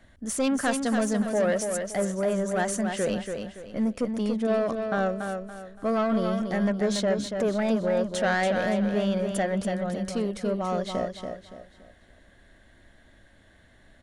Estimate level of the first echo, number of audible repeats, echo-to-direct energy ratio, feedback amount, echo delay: −6.0 dB, 4, −5.5 dB, 34%, 284 ms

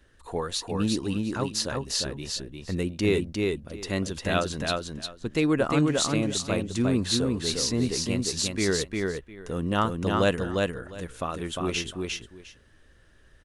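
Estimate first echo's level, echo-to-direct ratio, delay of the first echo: −3.0 dB, −3.0 dB, 353 ms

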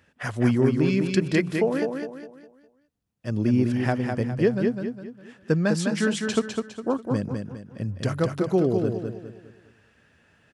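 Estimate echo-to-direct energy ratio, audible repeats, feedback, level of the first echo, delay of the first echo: −4.5 dB, 4, 38%, −5.0 dB, 204 ms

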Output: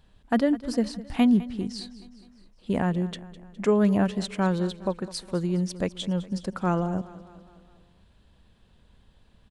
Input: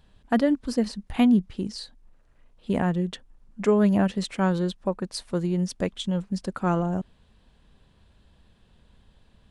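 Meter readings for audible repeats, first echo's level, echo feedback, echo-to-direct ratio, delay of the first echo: 4, −17.5 dB, 56%, −16.0 dB, 206 ms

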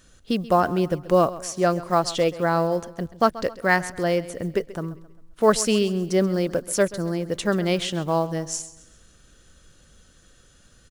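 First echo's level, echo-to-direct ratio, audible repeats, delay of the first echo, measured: −17.0 dB, −16.0 dB, 3, 133 ms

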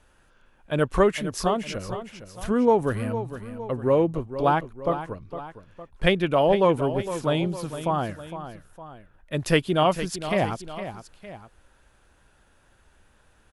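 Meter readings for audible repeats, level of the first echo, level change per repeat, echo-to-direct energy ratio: 2, −11.5 dB, −6.0 dB, −10.5 dB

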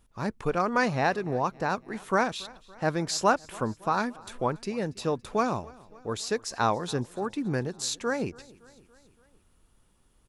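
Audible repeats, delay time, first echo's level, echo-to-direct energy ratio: 3, 282 ms, −23.0 dB, −21.0 dB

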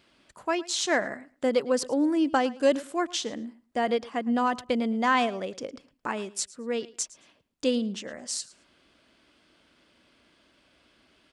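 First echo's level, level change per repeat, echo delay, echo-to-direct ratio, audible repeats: −20.0 dB, −15.0 dB, 110 ms, −20.0 dB, 2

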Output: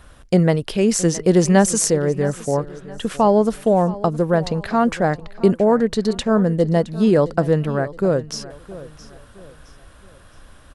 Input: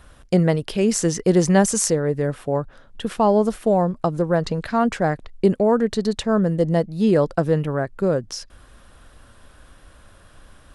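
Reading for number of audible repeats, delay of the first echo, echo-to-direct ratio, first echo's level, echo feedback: 3, 667 ms, −17.0 dB, −17.5 dB, 37%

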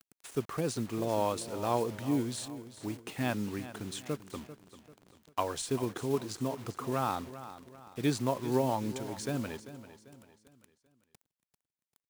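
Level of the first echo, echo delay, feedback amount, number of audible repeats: −14.0 dB, 393 ms, 41%, 3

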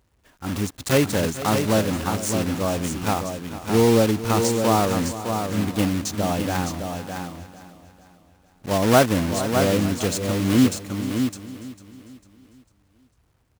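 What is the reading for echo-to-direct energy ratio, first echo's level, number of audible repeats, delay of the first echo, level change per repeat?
−5.5 dB, −14.5 dB, 6, 449 ms, repeats not evenly spaced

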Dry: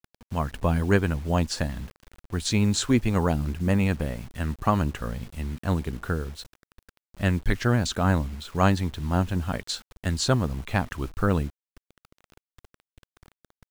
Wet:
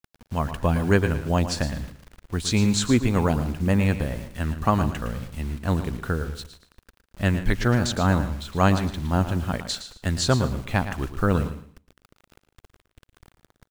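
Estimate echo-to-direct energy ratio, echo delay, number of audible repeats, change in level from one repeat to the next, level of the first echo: −10.0 dB, 113 ms, 4, repeats not evenly spaced, −11.0 dB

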